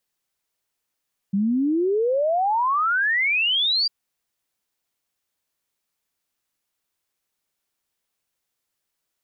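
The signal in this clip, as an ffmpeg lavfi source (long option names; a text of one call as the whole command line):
ffmpeg -f lavfi -i "aevalsrc='0.126*clip(min(t,2.55-t)/0.01,0,1)*sin(2*PI*190*2.55/log(4800/190)*(exp(log(4800/190)*t/2.55)-1))':duration=2.55:sample_rate=44100" out.wav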